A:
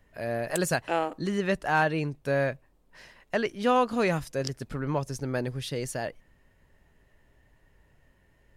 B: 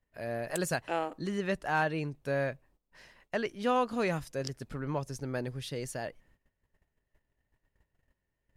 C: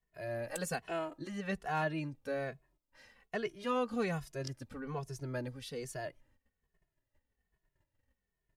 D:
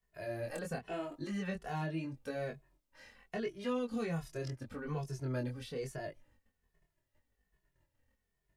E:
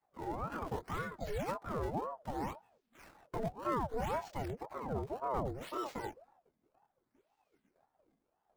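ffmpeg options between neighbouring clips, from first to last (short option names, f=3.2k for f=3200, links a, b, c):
-af "agate=range=-15dB:threshold=-58dB:ratio=16:detection=peak,volume=-5dB"
-filter_complex "[0:a]asplit=2[a][b];[b]adelay=2.3,afreqshift=-1.2[c];[a][c]amix=inputs=2:normalize=1,volume=-1.5dB"
-filter_complex "[0:a]acrossover=split=530|2600[a][b][c];[a]acompressor=threshold=-38dB:ratio=4[d];[b]acompressor=threshold=-48dB:ratio=4[e];[c]acompressor=threshold=-56dB:ratio=4[f];[d][e][f]amix=inputs=3:normalize=0,flanger=delay=20:depth=4.9:speed=0.81,volume=5.5dB"
-filter_complex "[0:a]acrossover=split=480|1300[a][b][c];[c]acrusher=samples=18:mix=1:aa=0.000001:lfo=1:lforange=28.8:lforate=0.64[d];[a][b][d]amix=inputs=3:normalize=0,aeval=exprs='val(0)*sin(2*PI*530*n/s+530*0.6/1.9*sin(2*PI*1.9*n/s))':c=same,volume=3.5dB"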